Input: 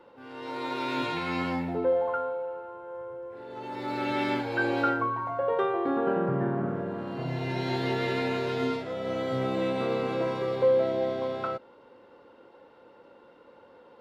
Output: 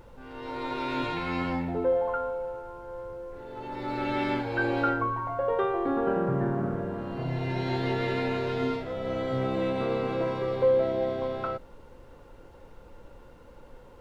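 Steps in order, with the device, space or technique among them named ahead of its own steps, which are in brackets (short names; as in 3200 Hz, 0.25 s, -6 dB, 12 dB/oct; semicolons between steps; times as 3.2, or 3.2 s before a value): car interior (bell 100 Hz +6.5 dB 0.52 oct; high shelf 4900 Hz -7 dB; brown noise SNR 20 dB)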